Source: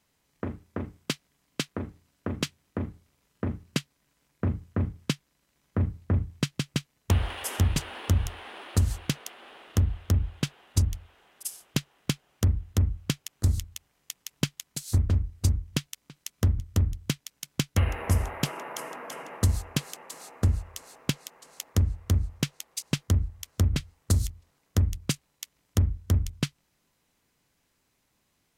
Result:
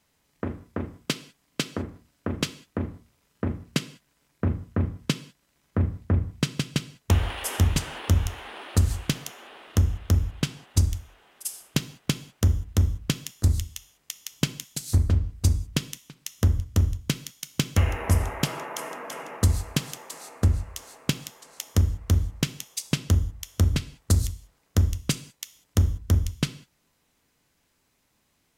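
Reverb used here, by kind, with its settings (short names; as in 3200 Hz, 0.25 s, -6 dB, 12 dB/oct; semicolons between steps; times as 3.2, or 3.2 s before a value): non-linear reverb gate 0.22 s falling, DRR 11.5 dB; gain +2.5 dB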